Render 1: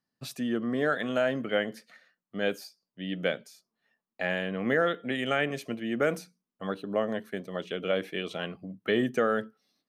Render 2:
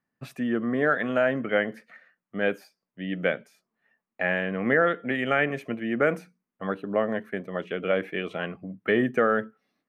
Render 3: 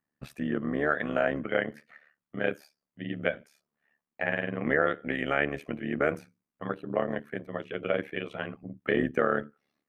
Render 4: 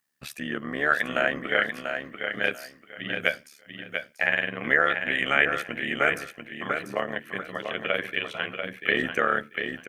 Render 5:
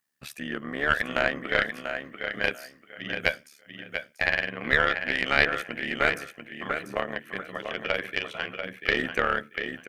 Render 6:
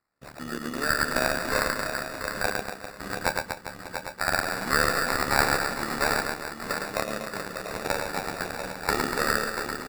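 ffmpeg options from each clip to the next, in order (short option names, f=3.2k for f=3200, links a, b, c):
-af "highshelf=f=3k:t=q:w=1.5:g=-11,volume=3dB"
-af "tremolo=f=73:d=0.889"
-filter_complex "[0:a]tiltshelf=f=1.3k:g=-9.5,asplit=2[a][b];[b]aecho=0:1:690|1380|2070:0.473|0.104|0.0229[c];[a][c]amix=inputs=2:normalize=0,volume=5dB"
-af "aeval=exprs='0.562*(cos(1*acos(clip(val(0)/0.562,-1,1)))-cos(1*PI/2))+0.2*(cos(2*acos(clip(val(0)/0.562,-1,1)))-cos(2*PI/2))+0.00891*(cos(7*acos(clip(val(0)/0.562,-1,1)))-cos(7*PI/2))':c=same,volume=-1dB"
-af "aecho=1:1:110|242|400.4|590.5|818.6:0.631|0.398|0.251|0.158|0.1,acrusher=samples=14:mix=1:aa=0.000001,volume=-1.5dB"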